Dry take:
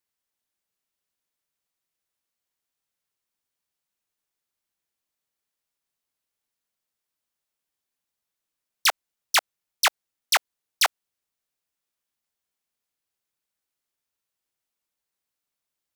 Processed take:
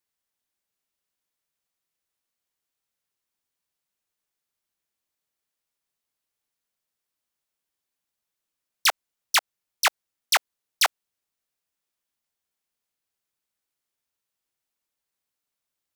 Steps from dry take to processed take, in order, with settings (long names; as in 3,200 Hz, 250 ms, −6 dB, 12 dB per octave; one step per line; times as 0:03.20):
0:09.38–0:09.85: downward compressor, threshold −23 dBFS, peak gain reduction 5 dB